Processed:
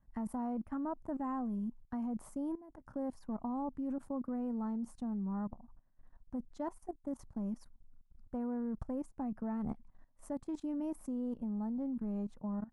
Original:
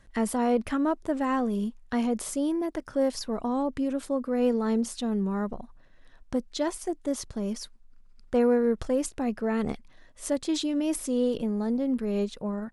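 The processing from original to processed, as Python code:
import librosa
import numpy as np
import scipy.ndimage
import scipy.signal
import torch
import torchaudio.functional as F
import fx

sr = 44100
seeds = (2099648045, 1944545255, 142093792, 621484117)

y = fx.curve_eq(x, sr, hz=(240.0, 440.0, 860.0, 3600.0, 9600.0), db=(0, -13, 0, -26, -15))
y = fx.level_steps(y, sr, step_db=17)
y = F.gain(torch.from_numpy(y), -2.5).numpy()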